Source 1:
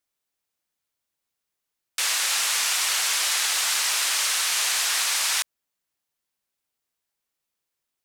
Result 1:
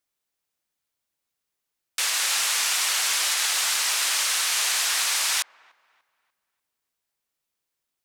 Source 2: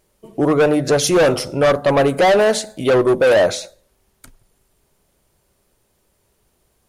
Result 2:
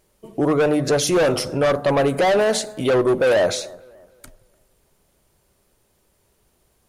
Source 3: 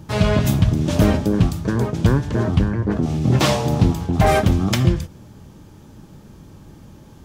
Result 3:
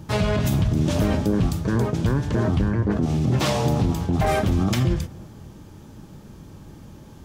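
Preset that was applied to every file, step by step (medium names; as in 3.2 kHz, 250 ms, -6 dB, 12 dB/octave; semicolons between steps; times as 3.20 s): peak limiter -12.5 dBFS; feedback echo behind a low-pass 294 ms, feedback 34%, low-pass 1.6 kHz, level -22 dB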